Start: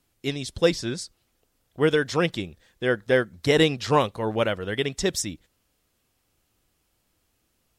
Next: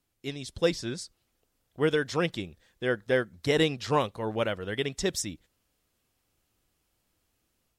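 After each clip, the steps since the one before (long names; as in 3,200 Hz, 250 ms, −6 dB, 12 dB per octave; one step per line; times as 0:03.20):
automatic gain control gain up to 4 dB
level −8 dB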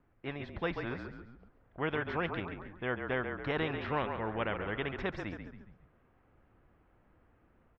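low-pass filter 1,800 Hz 24 dB per octave
echo with shifted repeats 138 ms, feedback 35%, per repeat −40 Hz, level −11 dB
every bin compressed towards the loudest bin 2 to 1
level −7 dB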